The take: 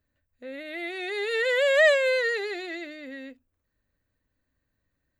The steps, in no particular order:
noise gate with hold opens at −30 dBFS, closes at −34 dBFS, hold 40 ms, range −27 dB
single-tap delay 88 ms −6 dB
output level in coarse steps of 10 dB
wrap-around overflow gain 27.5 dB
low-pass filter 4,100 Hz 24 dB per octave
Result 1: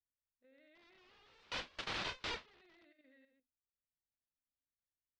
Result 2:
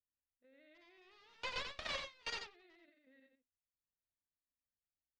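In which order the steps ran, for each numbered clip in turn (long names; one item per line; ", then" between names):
single-tap delay, then wrap-around overflow, then low-pass filter, then output level in coarse steps, then noise gate with hold
wrap-around overflow, then low-pass filter, then output level in coarse steps, then noise gate with hold, then single-tap delay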